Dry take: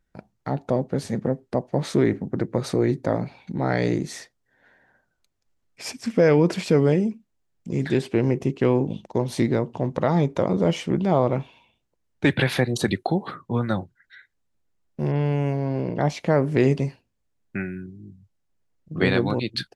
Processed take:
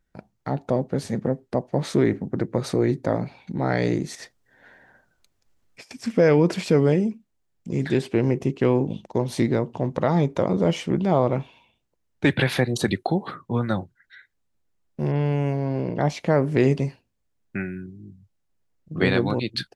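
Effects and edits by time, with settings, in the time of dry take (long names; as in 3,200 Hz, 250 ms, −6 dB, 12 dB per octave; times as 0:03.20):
0:04.15–0:05.91: compressor whose output falls as the input rises −43 dBFS, ratio −0.5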